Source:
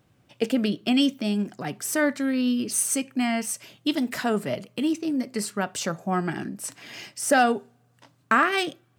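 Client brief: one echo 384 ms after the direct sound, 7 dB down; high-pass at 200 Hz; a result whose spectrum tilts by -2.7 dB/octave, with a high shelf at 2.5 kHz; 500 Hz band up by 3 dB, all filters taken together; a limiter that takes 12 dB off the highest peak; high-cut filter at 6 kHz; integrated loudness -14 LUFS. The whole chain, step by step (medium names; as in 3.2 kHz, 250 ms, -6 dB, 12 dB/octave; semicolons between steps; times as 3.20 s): high-pass 200 Hz; low-pass 6 kHz; peaking EQ 500 Hz +3.5 dB; treble shelf 2.5 kHz +8.5 dB; peak limiter -16 dBFS; delay 384 ms -7 dB; trim +12.5 dB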